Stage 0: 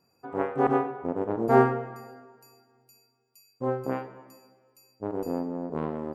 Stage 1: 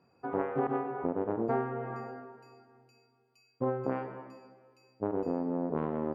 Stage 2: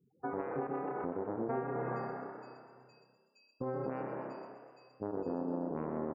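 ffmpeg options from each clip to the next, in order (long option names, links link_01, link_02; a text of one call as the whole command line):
ffmpeg -i in.wav -af "highpass=62,acompressor=threshold=-30dB:ratio=20,lowpass=2700,volume=3.5dB" out.wav
ffmpeg -i in.wav -filter_complex "[0:a]afftfilt=real='re*gte(hypot(re,im),0.00178)':imag='im*gte(hypot(re,im),0.00178)':win_size=1024:overlap=0.75,asplit=9[link_01][link_02][link_03][link_04][link_05][link_06][link_07][link_08][link_09];[link_02]adelay=124,afreqshift=32,volume=-9dB[link_10];[link_03]adelay=248,afreqshift=64,volume=-13dB[link_11];[link_04]adelay=372,afreqshift=96,volume=-17dB[link_12];[link_05]adelay=496,afreqshift=128,volume=-21dB[link_13];[link_06]adelay=620,afreqshift=160,volume=-25.1dB[link_14];[link_07]adelay=744,afreqshift=192,volume=-29.1dB[link_15];[link_08]adelay=868,afreqshift=224,volume=-33.1dB[link_16];[link_09]adelay=992,afreqshift=256,volume=-37.1dB[link_17];[link_01][link_10][link_11][link_12][link_13][link_14][link_15][link_16][link_17]amix=inputs=9:normalize=0,alimiter=level_in=2.5dB:limit=-24dB:level=0:latency=1:release=292,volume=-2.5dB" out.wav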